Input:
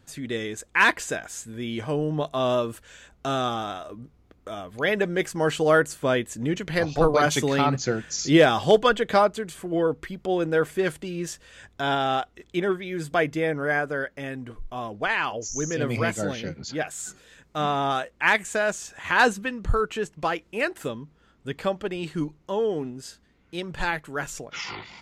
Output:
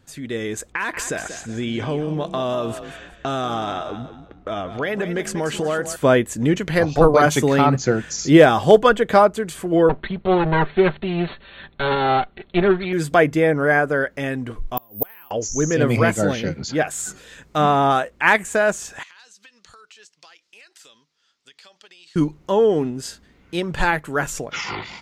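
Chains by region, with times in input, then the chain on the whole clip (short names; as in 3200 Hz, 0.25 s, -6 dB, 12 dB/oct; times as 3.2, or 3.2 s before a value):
0.72–5.96 low-pass opened by the level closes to 2500 Hz, open at -20.5 dBFS + compressor 4:1, threshold -30 dBFS + frequency-shifting echo 0.185 s, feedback 32%, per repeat +31 Hz, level -11 dB
9.89–12.93 minimum comb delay 5.1 ms + brick-wall FIR low-pass 4400 Hz
14.77–15.31 flipped gate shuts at -23 dBFS, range -33 dB + careless resampling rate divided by 3×, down filtered, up zero stuff
19.03–22.16 band-pass 5000 Hz, Q 2.1 + compressor 16:1, threshold -52 dBFS
whole clip: dynamic EQ 4100 Hz, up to -7 dB, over -40 dBFS, Q 0.71; AGC gain up to 8 dB; gain +1 dB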